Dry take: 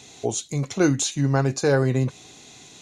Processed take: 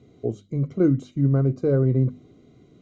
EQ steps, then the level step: boxcar filter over 51 samples; distance through air 52 m; hum notches 50/100/150/200/250 Hz; +3.0 dB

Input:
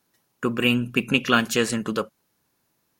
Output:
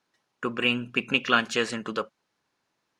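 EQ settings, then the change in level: distance through air 100 m; bass shelf 330 Hz -11.5 dB; 0.0 dB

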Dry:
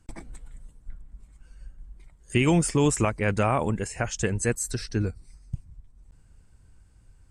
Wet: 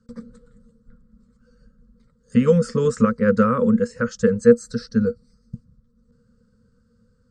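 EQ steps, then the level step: graphic EQ 125/250/500/1000/2000/8000 Hz +9/+12/+12/+6/+9/+10 dB; dynamic bell 1.8 kHz, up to +6 dB, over -31 dBFS, Q 0.86; FFT filter 150 Hz 0 dB, 230 Hz +14 dB, 340 Hz -29 dB, 480 Hz +14 dB, 710 Hz -26 dB, 1.3 kHz +9 dB, 2.3 kHz -16 dB, 4.5 kHz +9 dB, 9.8 kHz -16 dB; -12.5 dB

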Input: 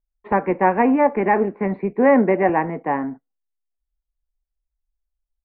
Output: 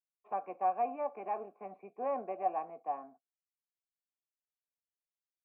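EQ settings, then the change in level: vowel filter a; -8.5 dB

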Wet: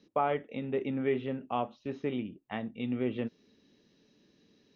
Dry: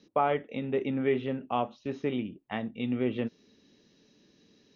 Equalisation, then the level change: distance through air 62 m; -2.5 dB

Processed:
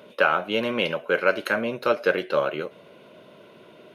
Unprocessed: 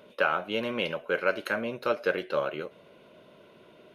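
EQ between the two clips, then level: high-pass 90 Hz; +5.5 dB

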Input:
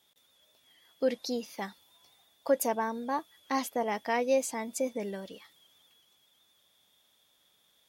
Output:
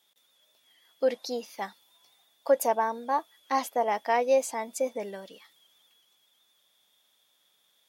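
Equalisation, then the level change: high-pass 110 Hz; dynamic bell 720 Hz, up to +8 dB, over -42 dBFS, Q 0.85; bass shelf 370 Hz -7.5 dB; 0.0 dB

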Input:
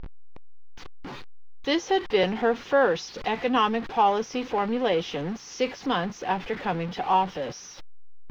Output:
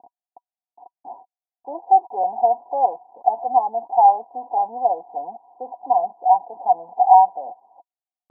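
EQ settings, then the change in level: resonant high-pass 760 Hz, resonance Q 8.4; rippled Chebyshev low-pass 1 kHz, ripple 9 dB; distance through air 480 m; +2.5 dB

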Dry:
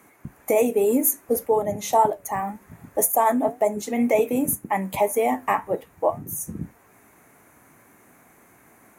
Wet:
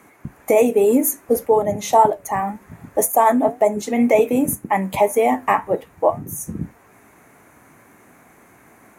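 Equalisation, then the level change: treble shelf 9.4 kHz -8 dB; +5.0 dB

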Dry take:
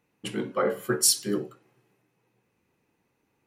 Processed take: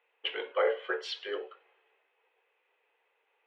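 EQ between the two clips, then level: Chebyshev band-pass 440–3300 Hz, order 4; treble shelf 2 kHz +8.5 dB; dynamic bell 1.2 kHz, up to -7 dB, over -44 dBFS, Q 2.3; 0.0 dB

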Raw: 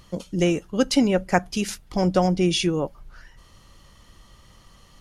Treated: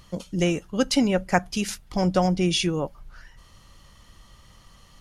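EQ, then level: peaking EQ 370 Hz -3.5 dB 1.2 oct; 0.0 dB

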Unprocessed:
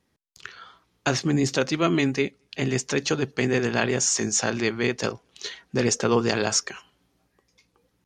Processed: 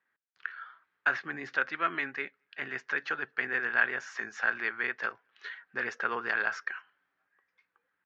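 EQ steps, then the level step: band-pass filter 1.6 kHz, Q 4.3; distance through air 180 m; +6.5 dB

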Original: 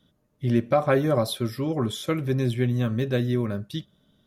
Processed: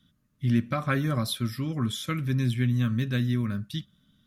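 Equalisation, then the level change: high-order bell 560 Hz -13 dB; 0.0 dB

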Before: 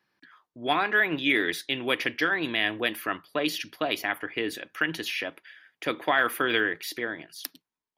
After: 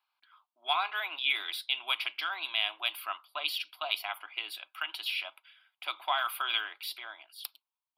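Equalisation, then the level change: inverse Chebyshev high-pass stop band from 170 Hz, stop band 60 dB; dynamic bell 4.9 kHz, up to +5 dB, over -43 dBFS, Q 0.83; static phaser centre 1.8 kHz, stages 6; -2.5 dB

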